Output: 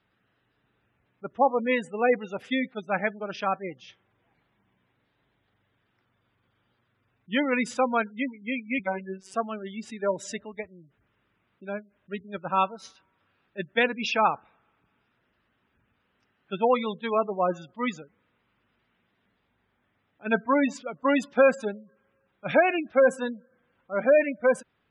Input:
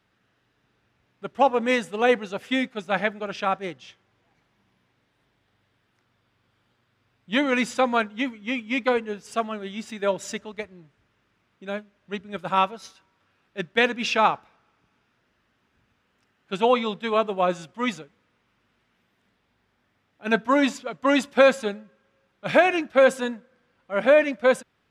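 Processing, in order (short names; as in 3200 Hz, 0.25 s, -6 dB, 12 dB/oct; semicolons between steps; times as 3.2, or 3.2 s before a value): spectral gate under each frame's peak -20 dB strong; 8.79–9.34 robotiser 190 Hz; gain -2.5 dB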